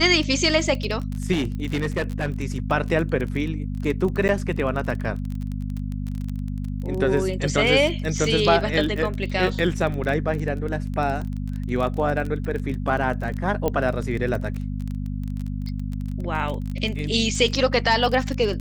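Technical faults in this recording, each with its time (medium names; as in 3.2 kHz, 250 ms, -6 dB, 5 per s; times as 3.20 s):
crackle 25 per s -27 dBFS
hum 50 Hz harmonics 5 -28 dBFS
1.32–2.34 s: clipped -19 dBFS
4.28–4.29 s: dropout 9.4 ms
13.68 s: pop -11 dBFS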